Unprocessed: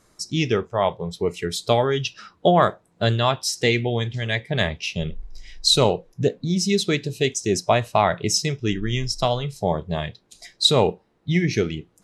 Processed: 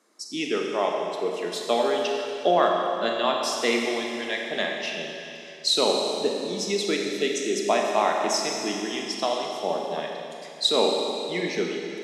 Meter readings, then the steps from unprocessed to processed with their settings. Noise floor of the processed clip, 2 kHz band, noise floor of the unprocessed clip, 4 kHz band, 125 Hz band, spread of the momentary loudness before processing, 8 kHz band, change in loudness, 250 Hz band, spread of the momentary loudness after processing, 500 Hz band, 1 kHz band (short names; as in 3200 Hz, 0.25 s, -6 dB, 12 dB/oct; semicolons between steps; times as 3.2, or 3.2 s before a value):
-41 dBFS, -2.0 dB, -62 dBFS, -3.0 dB, -21.0 dB, 9 LU, -4.0 dB, -3.0 dB, -5.0 dB, 9 LU, -2.0 dB, -2.0 dB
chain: steep high-pass 230 Hz 36 dB/oct; high shelf 6900 Hz -4.5 dB; Schroeder reverb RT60 2.8 s, combs from 30 ms, DRR 0.5 dB; gain -4.5 dB